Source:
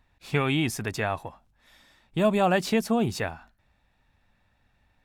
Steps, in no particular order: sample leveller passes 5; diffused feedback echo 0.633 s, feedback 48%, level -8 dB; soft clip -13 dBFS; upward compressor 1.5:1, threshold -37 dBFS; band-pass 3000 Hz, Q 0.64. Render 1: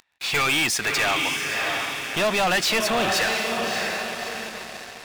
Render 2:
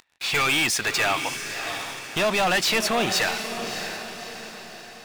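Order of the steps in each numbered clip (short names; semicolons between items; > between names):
band-pass > upward compressor > diffused feedback echo > sample leveller > soft clip; soft clip > band-pass > upward compressor > sample leveller > diffused feedback echo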